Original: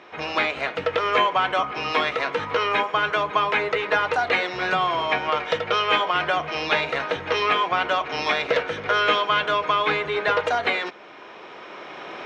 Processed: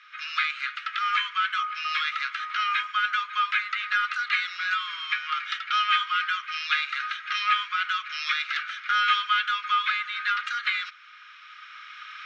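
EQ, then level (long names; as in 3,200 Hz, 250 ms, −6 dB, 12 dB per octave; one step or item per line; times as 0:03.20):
Chebyshev high-pass with heavy ripple 1,200 Hz, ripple 3 dB
high-frequency loss of the air 67 metres
notch filter 1,800 Hz, Q 12
+1.5 dB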